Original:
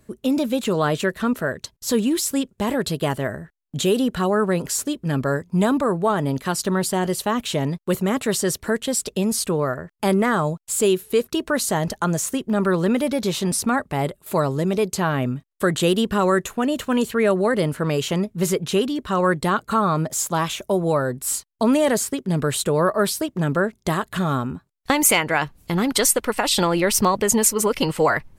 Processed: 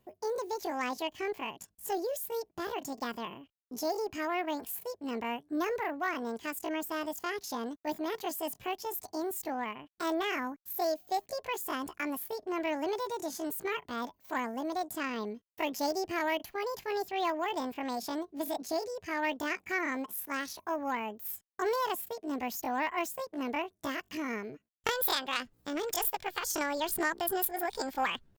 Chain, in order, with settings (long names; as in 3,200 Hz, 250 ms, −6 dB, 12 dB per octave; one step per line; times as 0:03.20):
pitch shifter +9 semitones
harmonic generator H 2 −33 dB, 3 −16 dB, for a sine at −4 dBFS
level −8.5 dB